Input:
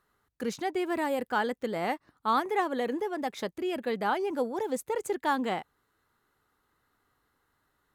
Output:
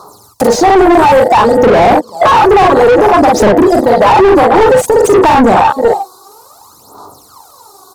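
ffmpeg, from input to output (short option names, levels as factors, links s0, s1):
-filter_complex "[0:a]asplit=2[s0][s1];[s1]aecho=0:1:383:0.0708[s2];[s0][s2]amix=inputs=2:normalize=0,acompressor=threshold=0.00708:ratio=8,asplit=2[s3][s4];[s4]aecho=0:1:43|53:0.631|0.422[s5];[s3][s5]amix=inputs=2:normalize=0,acontrast=46,asuperstop=centerf=2200:order=8:qfactor=0.6,bandreject=f=122.8:t=h:w=4,bandreject=f=245.6:t=h:w=4,bandreject=f=368.4:t=h:w=4,bandreject=f=491.2:t=h:w=4,bandreject=f=614:t=h:w=4,aphaser=in_gain=1:out_gain=1:delay=2.7:decay=0.74:speed=0.57:type=sinusoidal,afwtdn=0.0126,tiltshelf=f=1100:g=-10,asplit=2[s6][s7];[s7]highpass=f=720:p=1,volume=70.8,asoftclip=type=tanh:threshold=0.133[s8];[s6][s8]amix=inputs=2:normalize=0,lowpass=f=1400:p=1,volume=0.501,equalizer=f=110:t=o:w=0.63:g=5,alimiter=level_in=14.1:limit=0.891:release=50:level=0:latency=1,volume=0.891"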